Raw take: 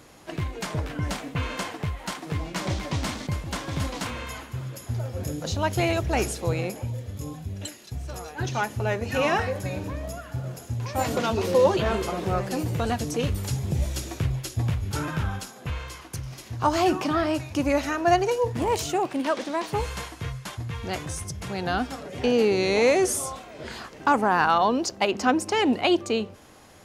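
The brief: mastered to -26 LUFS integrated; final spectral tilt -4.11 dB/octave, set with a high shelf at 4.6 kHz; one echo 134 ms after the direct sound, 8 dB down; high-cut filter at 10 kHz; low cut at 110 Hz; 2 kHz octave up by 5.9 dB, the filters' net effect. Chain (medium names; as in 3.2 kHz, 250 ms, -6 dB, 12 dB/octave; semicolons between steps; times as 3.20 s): high-pass 110 Hz; low-pass 10 kHz; peaking EQ 2 kHz +7 dB; treble shelf 4.6 kHz +3.5 dB; delay 134 ms -8 dB; trim -1.5 dB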